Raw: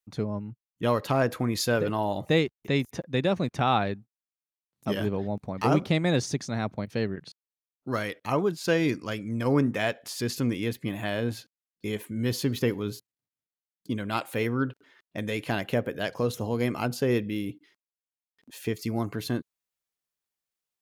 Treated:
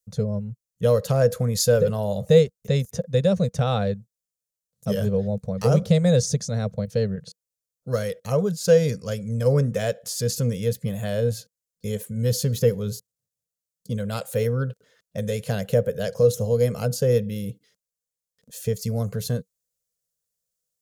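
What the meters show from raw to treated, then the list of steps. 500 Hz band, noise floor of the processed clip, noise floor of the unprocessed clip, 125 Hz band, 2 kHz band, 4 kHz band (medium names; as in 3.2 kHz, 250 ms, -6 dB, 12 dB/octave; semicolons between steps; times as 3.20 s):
+7.5 dB, under -85 dBFS, under -85 dBFS, +8.0 dB, -5.0 dB, +1.0 dB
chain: FFT filter 190 Hz 0 dB, 330 Hz -26 dB, 480 Hz +4 dB, 870 Hz -17 dB, 1.5 kHz -11 dB, 2.3 kHz -16 dB, 6.9 kHz +2 dB, 12 kHz -1 dB; trim +8 dB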